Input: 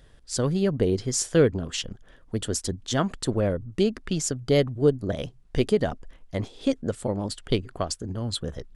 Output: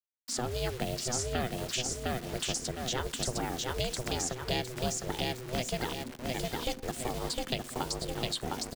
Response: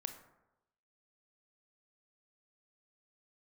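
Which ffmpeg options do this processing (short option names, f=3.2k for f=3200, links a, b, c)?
-filter_complex "[0:a]lowpass=6.8k,aemphasis=mode=production:type=50kf,aecho=1:1:708|1416|2124|2832:0.596|0.185|0.0572|0.0177,acrusher=bits=6:mix=0:aa=0.000001,acrossover=split=180|870|2600[a][b][c][d];[a]acompressor=threshold=-40dB:ratio=4[e];[b]acompressor=threshold=-36dB:ratio=4[f];[c]acompressor=threshold=-39dB:ratio=4[g];[d]acompressor=threshold=-34dB:ratio=4[h];[e][f][g][h]amix=inputs=4:normalize=0,asplit=2[i][j];[1:a]atrim=start_sample=2205[k];[j][k]afir=irnorm=-1:irlink=0,volume=-8dB[l];[i][l]amix=inputs=2:normalize=0,aeval=exprs='val(0)*sin(2*PI*250*n/s)':c=same"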